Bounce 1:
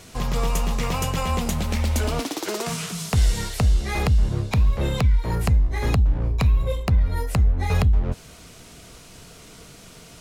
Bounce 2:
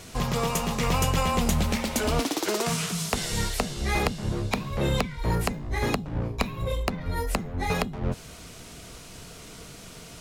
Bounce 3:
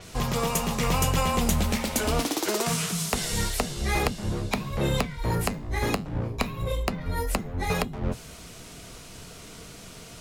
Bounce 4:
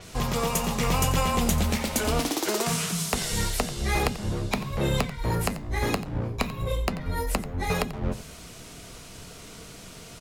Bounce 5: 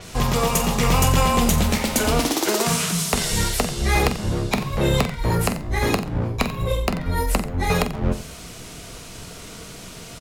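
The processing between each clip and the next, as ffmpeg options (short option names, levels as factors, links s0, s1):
-af "afftfilt=real='re*lt(hypot(re,im),0.708)':imag='im*lt(hypot(re,im),0.708)':win_size=1024:overlap=0.75,volume=1.12"
-af "flanger=delay=1.6:depth=9.5:regen=-79:speed=0.26:shape=triangular,acontrast=77,adynamicequalizer=threshold=0.00794:dfrequency=7300:dqfactor=0.7:tfrequency=7300:tqfactor=0.7:attack=5:release=100:ratio=0.375:range=2:mode=boostabove:tftype=highshelf,volume=0.75"
-af "aecho=1:1:89:0.178"
-filter_complex "[0:a]asplit=2[s0][s1];[s1]adelay=46,volume=0.282[s2];[s0][s2]amix=inputs=2:normalize=0,volume=5.96,asoftclip=hard,volume=0.168,volume=1.88"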